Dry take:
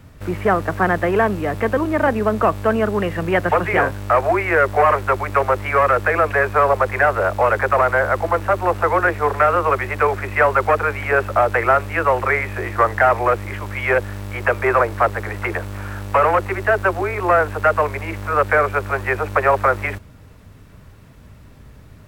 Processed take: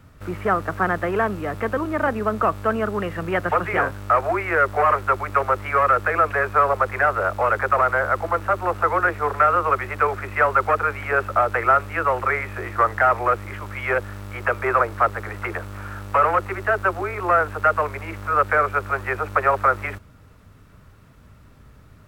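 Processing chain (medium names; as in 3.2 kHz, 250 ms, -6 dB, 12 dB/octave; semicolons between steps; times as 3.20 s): peaking EQ 1.3 kHz +7 dB 0.37 oct; trim -5.5 dB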